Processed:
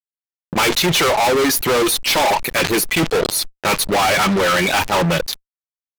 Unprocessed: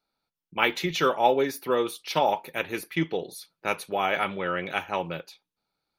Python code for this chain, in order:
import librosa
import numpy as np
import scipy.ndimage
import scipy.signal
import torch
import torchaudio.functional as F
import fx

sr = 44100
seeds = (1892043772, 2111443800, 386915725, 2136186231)

y = fx.dereverb_blind(x, sr, rt60_s=0.81)
y = fx.fuzz(y, sr, gain_db=43.0, gate_db=-49.0)
y = fx.sustainer(y, sr, db_per_s=66.0)
y = F.gain(torch.from_numpy(y), -1.0).numpy()